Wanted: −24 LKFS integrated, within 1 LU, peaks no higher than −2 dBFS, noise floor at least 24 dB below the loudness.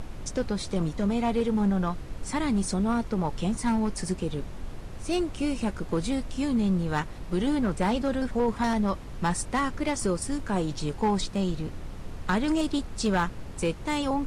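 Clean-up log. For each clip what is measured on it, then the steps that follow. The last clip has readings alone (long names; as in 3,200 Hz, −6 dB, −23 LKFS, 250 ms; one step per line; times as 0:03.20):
share of clipped samples 0.7%; peaks flattened at −18.5 dBFS; background noise floor −39 dBFS; target noise floor −53 dBFS; integrated loudness −28.5 LKFS; sample peak −18.5 dBFS; target loudness −24.0 LKFS
→ clipped peaks rebuilt −18.5 dBFS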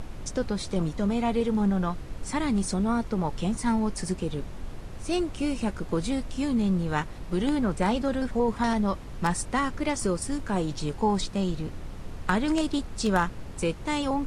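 share of clipped samples 0.0%; background noise floor −39 dBFS; target noise floor −52 dBFS
→ noise reduction from a noise print 13 dB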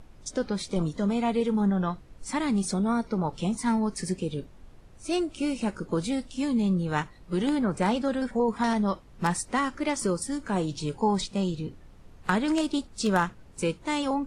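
background noise floor −51 dBFS; target noise floor −52 dBFS
→ noise reduction from a noise print 6 dB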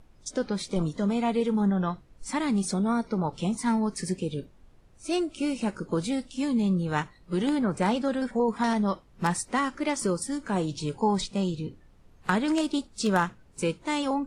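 background noise floor −57 dBFS; integrated loudness −28.0 LKFS; sample peak −10.0 dBFS; target loudness −24.0 LKFS
→ level +4 dB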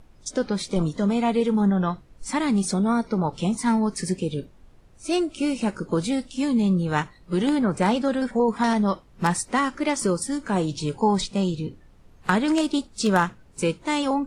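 integrated loudness −24.0 LKFS; sample peak −6.0 dBFS; background noise floor −53 dBFS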